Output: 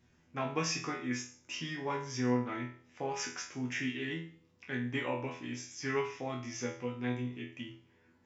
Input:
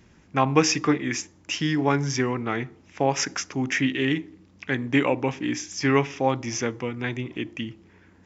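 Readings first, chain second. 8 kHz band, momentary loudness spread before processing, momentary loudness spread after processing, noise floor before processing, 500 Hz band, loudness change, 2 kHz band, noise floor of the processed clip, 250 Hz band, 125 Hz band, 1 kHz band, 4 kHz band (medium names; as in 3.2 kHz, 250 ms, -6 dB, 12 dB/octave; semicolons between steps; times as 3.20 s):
no reading, 10 LU, 10 LU, -56 dBFS, -11.5 dB, -11.5 dB, -11.0 dB, -68 dBFS, -12.0 dB, -12.0 dB, -12.5 dB, -11.0 dB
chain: chord resonator E2 fifth, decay 0.45 s; trim +1.5 dB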